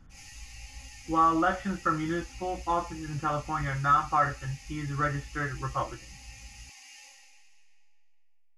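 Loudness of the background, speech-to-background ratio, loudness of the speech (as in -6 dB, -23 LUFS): -48.0 LUFS, 19.0 dB, -29.0 LUFS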